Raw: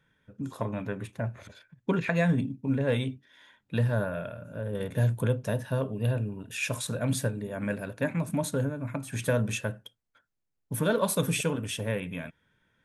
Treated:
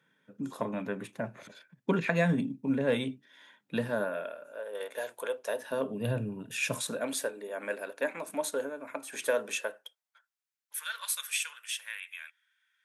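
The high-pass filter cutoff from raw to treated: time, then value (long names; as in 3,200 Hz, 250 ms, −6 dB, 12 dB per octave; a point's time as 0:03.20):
high-pass filter 24 dB per octave
0:03.77 170 Hz
0:04.62 480 Hz
0:05.43 480 Hz
0:06.12 130 Hz
0:06.68 130 Hz
0:07.15 360 Hz
0:09.57 360 Hz
0:10.75 1,500 Hz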